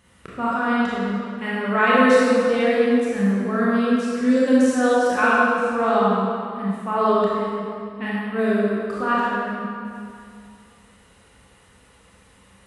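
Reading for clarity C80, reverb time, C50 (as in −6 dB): −2.0 dB, 2.4 s, −4.0 dB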